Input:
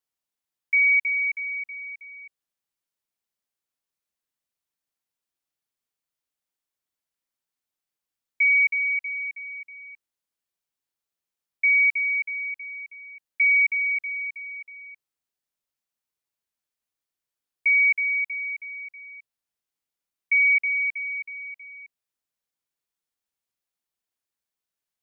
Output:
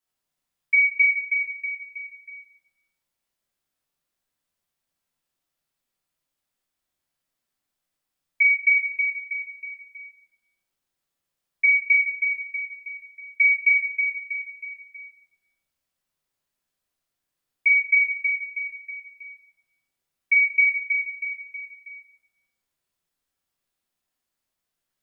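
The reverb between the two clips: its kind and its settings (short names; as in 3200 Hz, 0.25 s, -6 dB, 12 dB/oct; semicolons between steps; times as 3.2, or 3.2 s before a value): shoebox room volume 390 m³, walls mixed, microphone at 2.9 m; gain -1.5 dB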